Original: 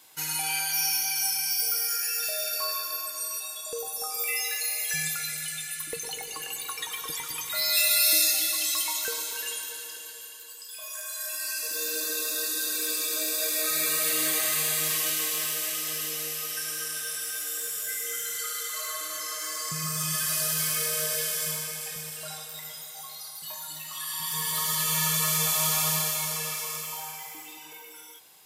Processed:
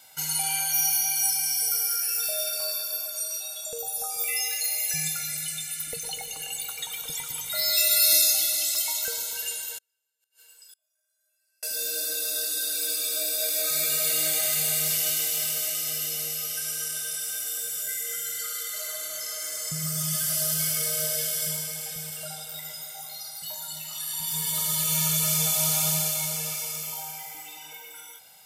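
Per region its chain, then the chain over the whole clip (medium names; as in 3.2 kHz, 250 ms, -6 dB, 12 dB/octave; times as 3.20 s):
9.78–11.63 s: feedback comb 140 Hz, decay 0.93 s, mix 80% + inverted gate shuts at -43 dBFS, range -31 dB
whole clip: comb 1.4 ms, depth 82%; dynamic bell 1.4 kHz, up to -7 dB, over -46 dBFS, Q 0.74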